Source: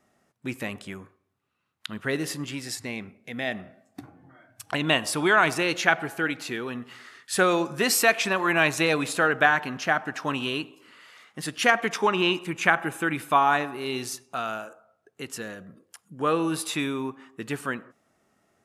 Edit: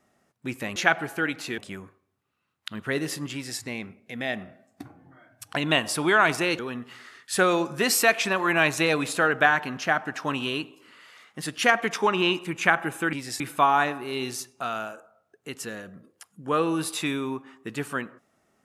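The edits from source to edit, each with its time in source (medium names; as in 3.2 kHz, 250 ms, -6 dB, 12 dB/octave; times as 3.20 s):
2.52–2.79 s: copy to 13.13 s
5.77–6.59 s: move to 0.76 s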